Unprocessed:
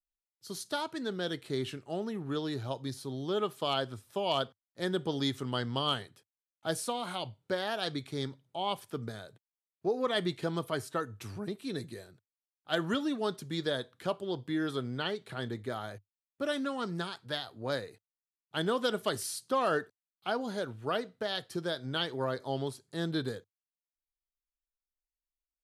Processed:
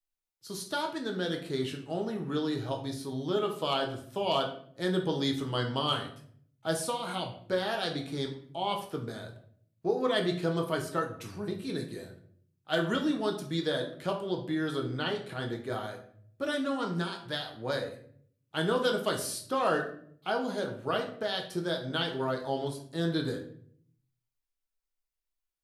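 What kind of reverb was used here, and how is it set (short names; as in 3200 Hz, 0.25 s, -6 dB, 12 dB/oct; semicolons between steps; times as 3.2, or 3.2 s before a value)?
shoebox room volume 81 m³, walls mixed, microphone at 0.6 m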